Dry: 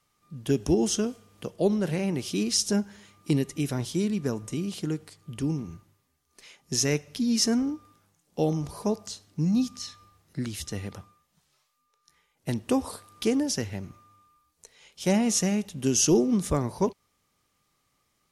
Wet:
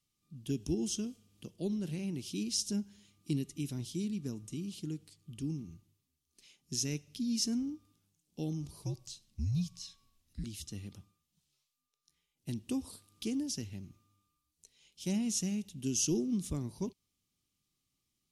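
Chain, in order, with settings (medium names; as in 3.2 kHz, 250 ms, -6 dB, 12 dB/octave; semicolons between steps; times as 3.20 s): high-order bell 950 Hz -12.5 dB 2.5 oct; 8.82–10.44 s: frequency shift -80 Hz; trim -8.5 dB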